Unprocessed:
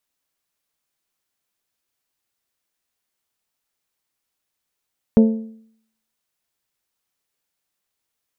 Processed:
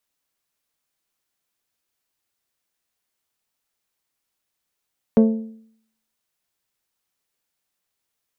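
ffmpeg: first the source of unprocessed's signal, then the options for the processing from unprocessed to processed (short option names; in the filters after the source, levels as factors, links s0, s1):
-f lavfi -i "aevalsrc='0.501*pow(10,-3*t/0.64)*sin(2*PI*222*t)+0.2*pow(10,-3*t/0.52)*sin(2*PI*444*t)+0.0794*pow(10,-3*t/0.492)*sin(2*PI*532.8*t)+0.0316*pow(10,-3*t/0.46)*sin(2*PI*666*t)+0.0126*pow(10,-3*t/0.422)*sin(2*PI*888*t)':d=1.55:s=44100"
-filter_complex "[0:a]acrossover=split=190[s0][s1];[s0]asoftclip=type=tanh:threshold=0.0422[s2];[s2][s1]amix=inputs=2:normalize=0"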